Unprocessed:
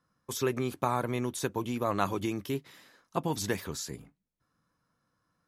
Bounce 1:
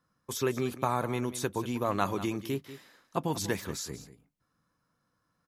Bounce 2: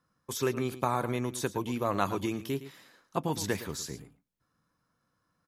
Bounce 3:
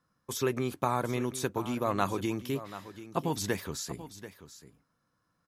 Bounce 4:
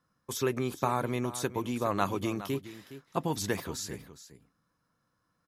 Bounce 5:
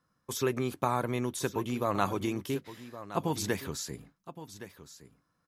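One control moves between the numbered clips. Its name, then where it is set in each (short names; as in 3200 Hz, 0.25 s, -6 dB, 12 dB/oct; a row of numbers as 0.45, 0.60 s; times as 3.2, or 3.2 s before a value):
echo, time: 0.19, 0.112, 0.736, 0.414, 1.117 s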